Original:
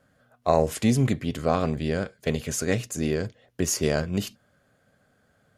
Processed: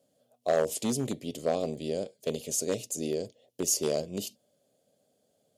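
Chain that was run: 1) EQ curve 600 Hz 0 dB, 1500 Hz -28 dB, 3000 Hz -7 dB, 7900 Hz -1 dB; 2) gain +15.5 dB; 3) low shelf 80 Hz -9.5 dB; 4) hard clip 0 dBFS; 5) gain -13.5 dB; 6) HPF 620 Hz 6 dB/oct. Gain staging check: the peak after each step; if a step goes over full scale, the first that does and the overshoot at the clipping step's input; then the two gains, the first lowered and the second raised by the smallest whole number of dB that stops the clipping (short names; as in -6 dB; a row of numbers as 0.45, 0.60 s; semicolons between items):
-9.0, +6.5, +6.0, 0.0, -13.5, -13.0 dBFS; step 2, 6.0 dB; step 2 +9.5 dB, step 5 -7.5 dB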